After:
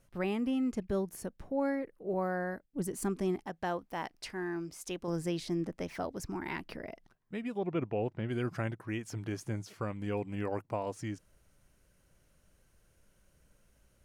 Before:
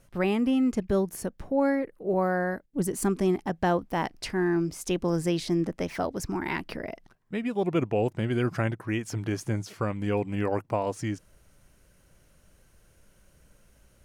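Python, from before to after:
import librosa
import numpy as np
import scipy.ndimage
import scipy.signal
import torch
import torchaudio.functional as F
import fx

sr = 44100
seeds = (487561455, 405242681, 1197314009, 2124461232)

y = fx.low_shelf(x, sr, hz=350.0, db=-8.0, at=(3.43, 5.08))
y = fx.lowpass(y, sr, hz=3200.0, slope=12, at=(7.58, 8.29))
y = y * 10.0 ** (-7.5 / 20.0)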